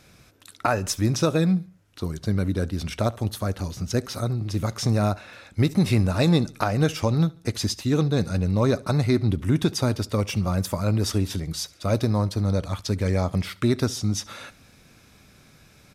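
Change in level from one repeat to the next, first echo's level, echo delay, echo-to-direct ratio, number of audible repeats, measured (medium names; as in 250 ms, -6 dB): -7.0 dB, -23.0 dB, 70 ms, -22.0 dB, 2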